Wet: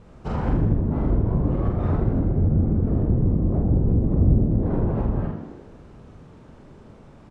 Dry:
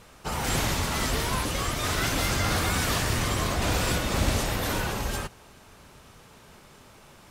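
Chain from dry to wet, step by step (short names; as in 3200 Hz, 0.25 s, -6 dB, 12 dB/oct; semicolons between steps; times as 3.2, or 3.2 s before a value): LPF 9200 Hz 24 dB/oct; tilt shelf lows +7 dB, about 650 Hz; treble ducked by the level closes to 310 Hz, closed at -18 dBFS; doubler 45 ms -3 dB; on a send: frequency-shifting echo 81 ms, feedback 57%, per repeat +62 Hz, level -7 dB; on the sum: mismatched tape noise reduction decoder only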